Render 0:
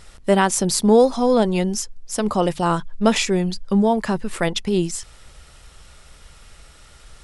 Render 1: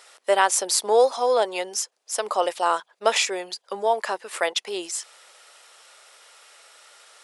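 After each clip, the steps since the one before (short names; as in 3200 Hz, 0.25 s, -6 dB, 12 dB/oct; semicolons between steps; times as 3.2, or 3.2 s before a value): HPF 490 Hz 24 dB/oct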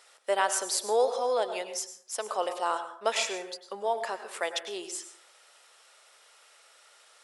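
plate-style reverb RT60 0.59 s, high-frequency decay 0.55×, pre-delay 85 ms, DRR 9.5 dB; gain -7.5 dB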